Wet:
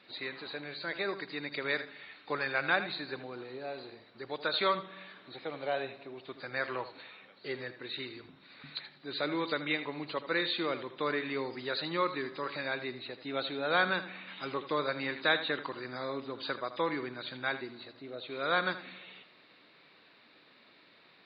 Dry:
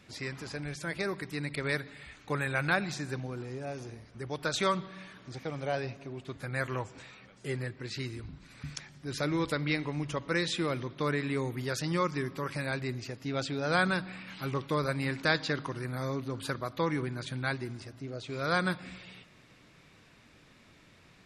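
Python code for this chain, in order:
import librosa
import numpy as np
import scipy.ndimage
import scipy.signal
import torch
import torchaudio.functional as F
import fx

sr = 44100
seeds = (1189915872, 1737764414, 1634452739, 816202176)

y = fx.freq_compress(x, sr, knee_hz=3600.0, ratio=4.0)
y = scipy.signal.sosfilt(scipy.signal.butter(2, 330.0, 'highpass', fs=sr, output='sos'), y)
y = y + 10.0 ** (-13.0 / 20.0) * np.pad(y, (int(80 * sr / 1000.0), 0))[:len(y)]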